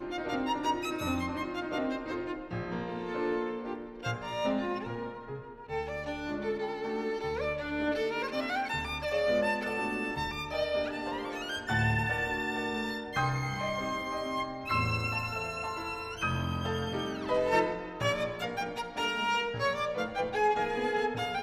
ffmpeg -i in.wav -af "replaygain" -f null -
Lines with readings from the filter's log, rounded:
track_gain = +13.0 dB
track_peak = 0.124